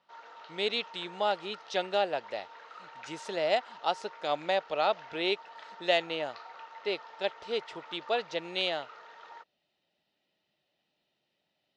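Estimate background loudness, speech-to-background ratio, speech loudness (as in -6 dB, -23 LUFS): -49.0 LUFS, 16.5 dB, -32.5 LUFS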